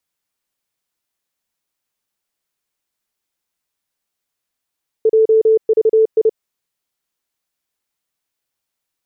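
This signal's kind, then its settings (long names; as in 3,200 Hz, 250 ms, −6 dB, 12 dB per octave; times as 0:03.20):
Morse code "JVI" 30 words per minute 441 Hz −8 dBFS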